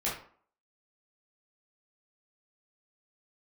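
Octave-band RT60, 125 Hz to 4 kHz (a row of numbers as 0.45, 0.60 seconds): 0.40, 0.50, 0.50, 0.50, 0.40, 0.30 seconds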